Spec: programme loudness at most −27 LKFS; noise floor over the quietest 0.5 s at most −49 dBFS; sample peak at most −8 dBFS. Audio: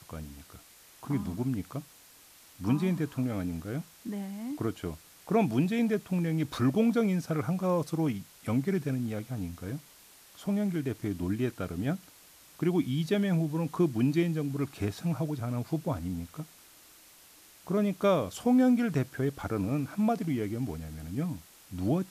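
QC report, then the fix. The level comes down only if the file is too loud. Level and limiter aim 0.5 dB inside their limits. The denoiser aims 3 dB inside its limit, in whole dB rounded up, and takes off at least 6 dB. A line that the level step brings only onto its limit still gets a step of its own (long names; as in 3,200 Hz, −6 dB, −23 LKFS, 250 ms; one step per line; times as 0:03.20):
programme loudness −30.5 LKFS: in spec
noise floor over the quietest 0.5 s −56 dBFS: in spec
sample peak −15.0 dBFS: in spec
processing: no processing needed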